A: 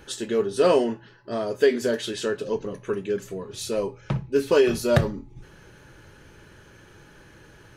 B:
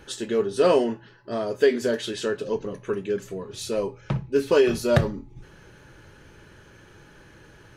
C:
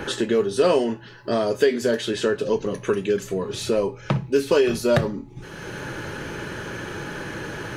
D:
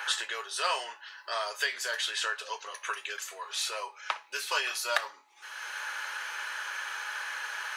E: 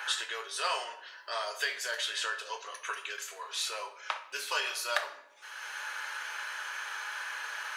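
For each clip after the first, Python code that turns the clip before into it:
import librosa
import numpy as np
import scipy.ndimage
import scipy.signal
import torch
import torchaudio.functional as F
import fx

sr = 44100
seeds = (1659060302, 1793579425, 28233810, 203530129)

y1 = fx.high_shelf(x, sr, hz=9300.0, db=-4.5)
y2 = fx.band_squash(y1, sr, depth_pct=70)
y2 = y2 * 10.0 ** (3.5 / 20.0)
y3 = scipy.signal.sosfilt(scipy.signal.butter(4, 940.0, 'highpass', fs=sr, output='sos'), y2)
y4 = fx.room_shoebox(y3, sr, seeds[0], volume_m3=190.0, walls='mixed', distance_m=0.43)
y4 = y4 * 10.0 ** (-2.5 / 20.0)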